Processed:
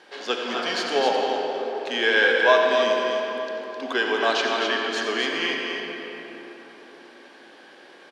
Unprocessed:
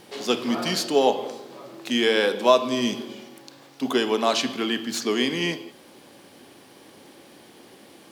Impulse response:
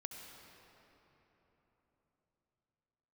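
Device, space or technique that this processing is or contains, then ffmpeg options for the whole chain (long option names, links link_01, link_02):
station announcement: -filter_complex "[0:a]highpass=440,lowpass=4700,equalizer=frequency=1600:width_type=o:width=0.24:gain=11,aecho=1:1:90.38|259.5:0.251|0.501[link_01];[1:a]atrim=start_sample=2205[link_02];[link_01][link_02]afir=irnorm=-1:irlink=0,volume=4dB"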